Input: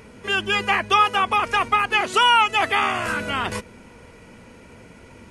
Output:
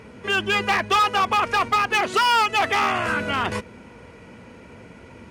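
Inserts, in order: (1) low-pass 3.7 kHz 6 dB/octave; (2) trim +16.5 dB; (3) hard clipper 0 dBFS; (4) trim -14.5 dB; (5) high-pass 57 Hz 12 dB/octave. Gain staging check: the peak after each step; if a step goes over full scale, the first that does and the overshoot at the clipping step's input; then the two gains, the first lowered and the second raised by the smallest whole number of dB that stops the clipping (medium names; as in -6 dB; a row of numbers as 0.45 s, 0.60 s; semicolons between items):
-7.5 dBFS, +9.0 dBFS, 0.0 dBFS, -14.5 dBFS, -12.5 dBFS; step 2, 9.0 dB; step 2 +7.5 dB, step 4 -5.5 dB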